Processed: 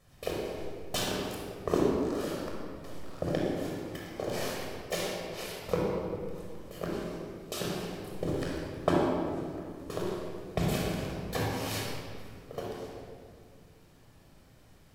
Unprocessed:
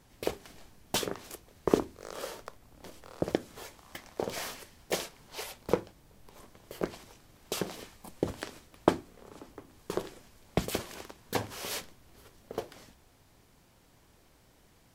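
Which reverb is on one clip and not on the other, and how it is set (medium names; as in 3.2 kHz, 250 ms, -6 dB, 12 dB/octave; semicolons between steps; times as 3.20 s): simulated room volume 3900 m³, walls mixed, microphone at 6.1 m; trim -6 dB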